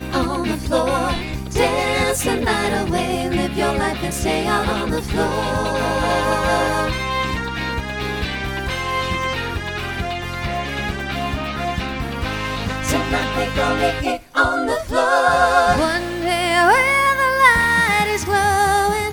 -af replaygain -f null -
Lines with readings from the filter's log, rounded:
track_gain = -0.2 dB
track_peak = 0.617